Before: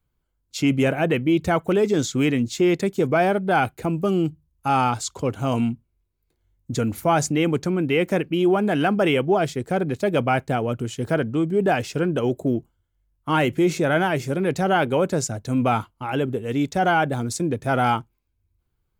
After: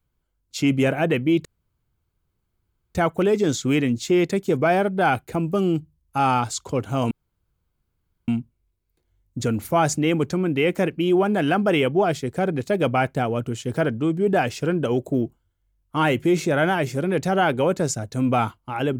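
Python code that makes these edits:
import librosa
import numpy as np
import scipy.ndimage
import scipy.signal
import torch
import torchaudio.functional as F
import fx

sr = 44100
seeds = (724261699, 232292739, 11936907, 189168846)

y = fx.edit(x, sr, fx.insert_room_tone(at_s=1.45, length_s=1.5),
    fx.insert_room_tone(at_s=5.61, length_s=1.17), tone=tone)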